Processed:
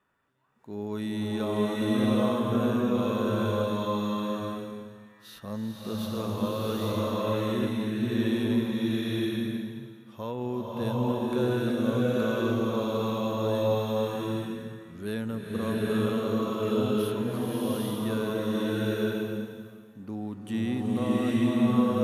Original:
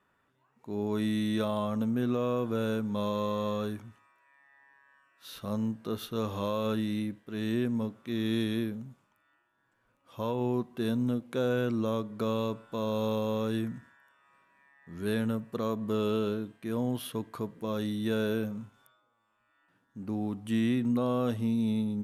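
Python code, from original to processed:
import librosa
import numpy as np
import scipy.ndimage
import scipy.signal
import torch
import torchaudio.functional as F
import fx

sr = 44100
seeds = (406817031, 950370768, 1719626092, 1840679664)

y = fx.rev_bloom(x, sr, seeds[0], attack_ms=830, drr_db=-6.0)
y = F.gain(torch.from_numpy(y), -2.5).numpy()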